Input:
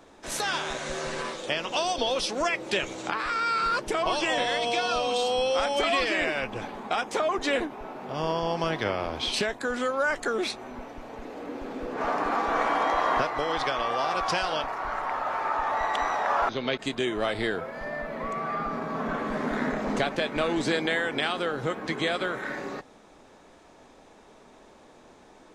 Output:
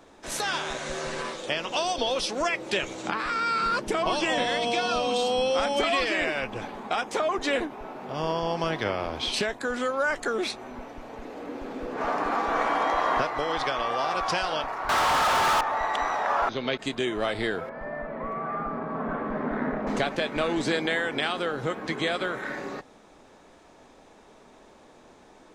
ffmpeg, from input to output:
-filter_complex "[0:a]asettb=1/sr,asplit=3[s0][s1][s2];[s0]atrim=end=3.044[s3];[s1]atrim=start=3.04:end=5.85,asetpts=PTS-STARTPTS,afade=t=in:d=0.004:c=qsin,afade=t=out:st=2.806:d=0.004:c=qsin,equalizer=f=210:w=1.5:g=7[s4];[s2]atrim=start=5.846[s5];[s3][s4]acrossfade=d=0.004:c1=hsin:c2=qsin[s6];[s6][s5]acrossfade=d=0.004:c1=qsin:c2=hsin,asettb=1/sr,asplit=3[s7][s8][s9];[s7]atrim=end=14.894[s10];[s8]atrim=start=14.89:end=15.61,asetpts=PTS-STARTPTS,afade=t=in:d=0.004:c=qsin,afade=t=out:st=0.716:d=0.004:c=qsin,asplit=2[s11][s12];[s12]highpass=f=720:p=1,volume=50.1,asoftclip=type=tanh:threshold=0.141[s13];[s11][s13]amix=inputs=2:normalize=0,lowpass=f=6900:p=1,volume=0.501[s14];[s9]atrim=start=15.606[s15];[s10][s14]acrossfade=d=0.004:c1=hsin:c2=qsin[s16];[s16][s15]acrossfade=d=0.004:c1=qsin:c2=hsin,asettb=1/sr,asplit=3[s17][s18][s19];[s17]atrim=end=17.694[s20];[s18]atrim=start=17.69:end=19.87,asetpts=PTS-STARTPTS,afade=t=in:d=0.004:c=qsin,afade=t=out:st=2.176:d=0.004:c=qsin,lowpass=1700[s21];[s19]atrim=start=19.866[s22];[s20][s21]acrossfade=d=0.004:c1=hsin:c2=qsin[s23];[s23][s22]acrossfade=d=0.004:c1=qsin:c2=hsin"

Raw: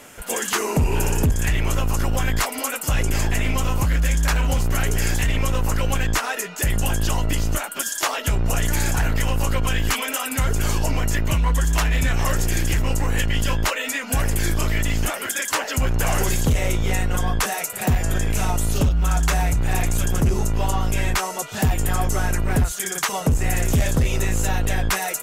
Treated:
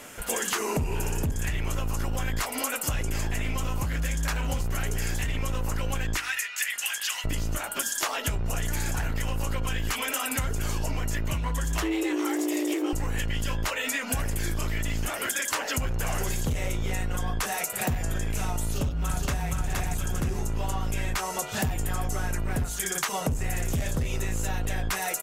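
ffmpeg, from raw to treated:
-filter_complex "[0:a]asplit=3[s0][s1][s2];[s0]afade=t=out:st=6.16:d=0.02[s3];[s1]highpass=f=2000:t=q:w=1.9,afade=t=in:st=6.16:d=0.02,afade=t=out:st=7.24:d=0.02[s4];[s2]afade=t=in:st=7.24:d=0.02[s5];[s3][s4][s5]amix=inputs=3:normalize=0,asettb=1/sr,asplit=3[s6][s7][s8];[s6]atrim=end=11.824[s9];[s7]atrim=start=11.82:end=12.93,asetpts=PTS-STARTPTS,afade=t=in:d=0.004:c=qsin,afade=t=out:st=1.106:d=0.004:c=qsin,afreqshift=270[s10];[s8]atrim=start=12.926[s11];[s9][s10]acrossfade=d=0.004:c1=hsin:c2=qsin[s12];[s12][s11]acrossfade=d=0.004:c1=qsin:c2=hsin,asplit=2[s13][s14];[s14]afade=t=in:st=18.62:d=0.01,afade=t=out:st=19.47:d=0.01,aecho=0:1:470|940|1410|1880|2350:0.841395|0.294488|0.103071|0.0360748|0.0126262[s15];[s13][s15]amix=inputs=2:normalize=0,bandreject=f=52.64:t=h:w=4,bandreject=f=105.28:t=h:w=4,bandreject=f=157.92:t=h:w=4,bandreject=f=210.56:t=h:w=4,bandreject=f=263.2:t=h:w=4,bandreject=f=315.84:t=h:w=4,bandreject=f=368.48:t=h:w=4,bandreject=f=421.12:t=h:w=4,bandreject=f=473.76:t=h:w=4,bandreject=f=526.4:t=h:w=4,bandreject=f=579.04:t=h:w=4,bandreject=f=631.68:t=h:w=4,bandreject=f=684.32:t=h:w=4,bandreject=f=736.96:t=h:w=4,bandreject=f=789.6:t=h:w=4,bandreject=f=842.24:t=h:w=4,bandreject=f=894.88:t=h:w=4,bandreject=f=947.52:t=h:w=4,bandreject=f=1000.16:t=h:w=4,acompressor=threshold=0.0562:ratio=6"

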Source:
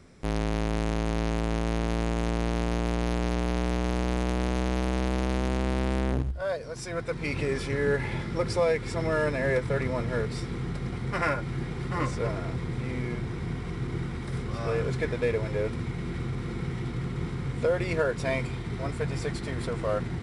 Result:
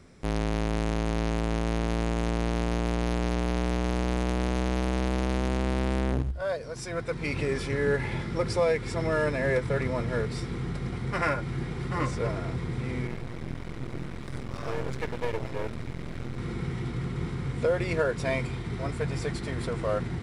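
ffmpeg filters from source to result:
-filter_complex "[0:a]asettb=1/sr,asplit=3[s0][s1][s2];[s0]atrim=end=13.074[s3];[s1]atrim=start=13.07:end=16.38,asetpts=PTS-STARTPTS,afade=t=in:d=0.004:c=qsin,afade=t=out:st=3.306:d=0.004:c=qsin,aeval=exprs='max(val(0),0)':c=same[s4];[s2]atrim=start=16.376[s5];[s3][s4]acrossfade=d=0.004:c1=hsin:c2=qsin[s6];[s6][s5]acrossfade=d=0.004:c1=qsin:c2=hsin"

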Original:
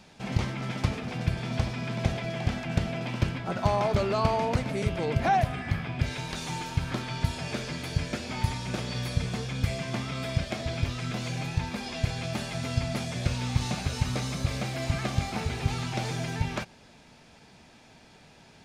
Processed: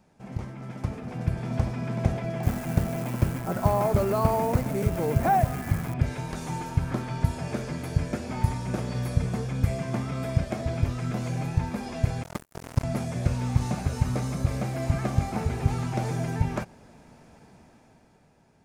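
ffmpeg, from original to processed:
-filter_complex "[0:a]asettb=1/sr,asplit=3[s0][s1][s2];[s0]atrim=end=2.434[s3];[s1]atrim=start=2.43:end=5.94,asetpts=PTS-STARTPTS,afade=t=in:d=0.004:c=qsin,afade=t=out:st=3.506:d=0.004:c=qsin,acrusher=bits=7:dc=4:mix=0:aa=0.000001[s4];[s2]atrim=start=5.936[s5];[s3][s4]acrossfade=d=0.004:c1=hsin:c2=qsin[s6];[s6][s5]acrossfade=d=0.004:c1=qsin:c2=hsin,asettb=1/sr,asplit=3[s7][s8][s9];[s7]atrim=end=12.234[s10];[s8]atrim=start=12.23:end=12.84,asetpts=PTS-STARTPTS,afade=t=in:d=0.004:c=qsin,afade=t=out:st=0.606:d=0.004:c=qsin,acrusher=bits=3:mix=0:aa=0.5[s11];[s9]atrim=start=12.836[s12];[s10][s11]acrossfade=d=0.004:c1=hsin:c2=qsin[s13];[s13][s12]acrossfade=d=0.004:c1=qsin:c2=hsin,equalizer=f=3600:t=o:w=1.8:g=-14,dynaudnorm=f=130:g=17:m=3.76,volume=0.501"

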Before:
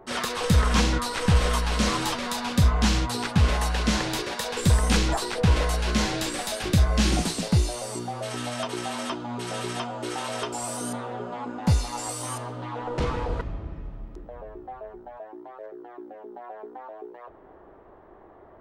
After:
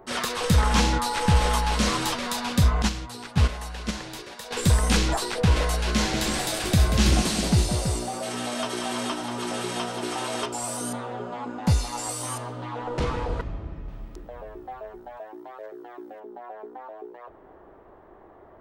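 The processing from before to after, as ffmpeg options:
-filter_complex "[0:a]asettb=1/sr,asplit=3[s0][s1][s2];[s0]atrim=end=0.584[s3];[s1]atrim=start=0.58:end=1.75,asetpts=PTS-STARTPTS,afade=t=in:d=0.004:c=qsin,afade=t=out:st=1.166:d=0.004:c=qsin,aeval=exprs='val(0)+0.0398*sin(2*PI*850*n/s)':c=same[s4];[s2]atrim=start=1.746[s5];[s3][s4]acrossfade=d=0.004:c1=hsin:c2=qsin[s6];[s6][s5]acrossfade=d=0.004:c1=qsin:c2=hsin,asettb=1/sr,asplit=3[s7][s8][s9];[s7]atrim=end=2.824[s10];[s8]atrim=start=2.82:end=4.51,asetpts=PTS-STARTPTS,afade=t=in:d=0.004:c=qsin,afade=t=out:st=1.686:d=0.004:c=qsin,agate=range=0.316:threshold=0.1:ratio=16:release=100:detection=peak[s11];[s9]atrim=start=4.506[s12];[s10][s11]acrossfade=d=0.004:c1=hsin:c2=qsin[s13];[s13][s12]acrossfade=d=0.004:c1=qsin:c2=hsin,asettb=1/sr,asplit=3[s14][s15][s16];[s14]atrim=end=5.934[s17];[s15]atrim=start=5.93:end=10.46,asetpts=PTS-STARTPTS,afade=t=in:d=0.004:c=qsin,afade=t=out:st=4.526:d=0.004:c=qsin,aecho=1:1:103|186|328:0.141|0.422|0.447,atrim=end_sample=199773[s18];[s16]atrim=start=10.456[s19];[s17][s18]acrossfade=d=0.004:c1=hsin:c2=qsin[s20];[s20][s19]acrossfade=d=0.004:c1=qsin:c2=hsin,asettb=1/sr,asplit=3[s21][s22][s23];[s21]atrim=end=13.884[s24];[s22]atrim=start=13.88:end=16.2,asetpts=PTS-STARTPTS,afade=t=in:d=0.004:c=qsin,afade=t=out:st=2.316:d=0.004:c=qsin,highshelf=f=2200:g=9.5[s25];[s23]atrim=start=16.196[s26];[s24][s25]acrossfade=d=0.004:c1=hsin:c2=qsin[s27];[s27][s26]acrossfade=d=0.004:c1=qsin:c2=hsin,lowpass=f=2500:p=1,aemphasis=mode=production:type=75kf"

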